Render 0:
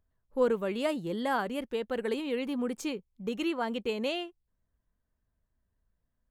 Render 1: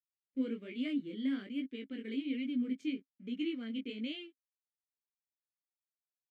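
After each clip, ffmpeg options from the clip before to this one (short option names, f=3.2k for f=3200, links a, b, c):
-filter_complex "[0:a]aeval=exprs='sgn(val(0))*max(abs(val(0))-0.00188,0)':c=same,flanger=delay=16:depth=6.8:speed=1.2,asplit=3[a][b][c];[a]bandpass=f=270:t=q:w=8,volume=0dB[d];[b]bandpass=f=2.29k:t=q:w=8,volume=-6dB[e];[c]bandpass=f=3.01k:t=q:w=8,volume=-9dB[f];[d][e][f]amix=inputs=3:normalize=0,volume=7.5dB"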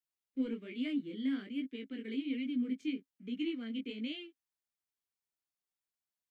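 -filter_complex "[0:a]bandreject=f=560:w=12,acrossover=split=170|550|1000[a][b][c][d];[c]aeval=exprs='clip(val(0),-1,0.00188)':c=same[e];[a][b][e][d]amix=inputs=4:normalize=0"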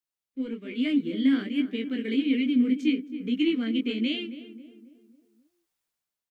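-filter_complex "[0:a]dynaudnorm=f=290:g=5:m=12dB,asplit=2[a][b];[b]adelay=270,lowpass=f=1.4k:p=1,volume=-12dB,asplit=2[c][d];[d]adelay=270,lowpass=f=1.4k:p=1,volume=0.49,asplit=2[e][f];[f]adelay=270,lowpass=f=1.4k:p=1,volume=0.49,asplit=2[g][h];[h]adelay=270,lowpass=f=1.4k:p=1,volume=0.49,asplit=2[i][j];[j]adelay=270,lowpass=f=1.4k:p=1,volume=0.49[k];[c][e][g][i][k]amix=inputs=5:normalize=0[l];[a][l]amix=inputs=2:normalize=0"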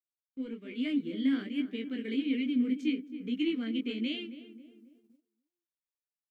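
-af "agate=range=-14dB:threshold=-57dB:ratio=16:detection=peak,volume=-6dB"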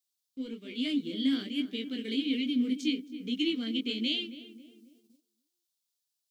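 -af "highshelf=f=2.8k:t=q:w=1.5:g=11.5"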